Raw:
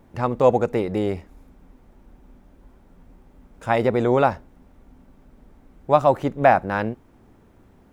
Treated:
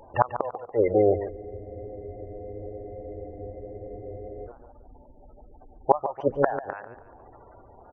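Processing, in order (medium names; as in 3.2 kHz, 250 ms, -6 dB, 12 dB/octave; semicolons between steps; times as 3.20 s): spectral gate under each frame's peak -20 dB strong; FFT filter 110 Hz 0 dB, 190 Hz -11 dB, 660 Hz +14 dB; inverted gate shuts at -4 dBFS, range -29 dB; on a send: feedback delay 143 ms, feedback 35%, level -11.5 dB; on the sum: spectral freeze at 1.32 s, 3.15 s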